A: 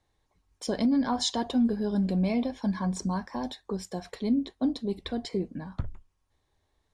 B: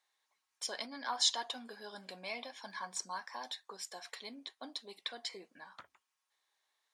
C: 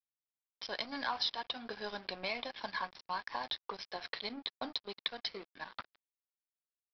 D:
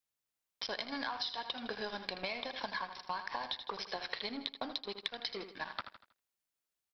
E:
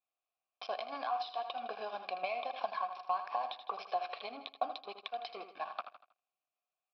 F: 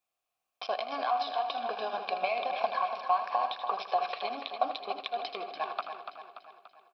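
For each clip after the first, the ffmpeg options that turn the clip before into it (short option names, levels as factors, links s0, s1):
-af "highpass=1200"
-af "acompressor=threshold=0.00562:ratio=3,aresample=11025,aeval=exprs='sgn(val(0))*max(abs(val(0))-0.00141,0)':c=same,aresample=44100,volume=3.76"
-filter_complex "[0:a]asplit=2[s0][s1];[s1]aecho=0:1:79|158|237|316:0.251|0.098|0.0382|0.0149[s2];[s0][s2]amix=inputs=2:normalize=0,acompressor=threshold=0.00891:ratio=6,volume=2"
-filter_complex "[0:a]asplit=3[s0][s1][s2];[s0]bandpass=f=730:t=q:w=8,volume=1[s3];[s1]bandpass=f=1090:t=q:w=8,volume=0.501[s4];[s2]bandpass=f=2440:t=q:w=8,volume=0.355[s5];[s3][s4][s5]amix=inputs=3:normalize=0,volume=3.98"
-af "aecho=1:1:289|578|867|1156|1445|1734:0.398|0.203|0.104|0.0528|0.0269|0.0137,volume=2"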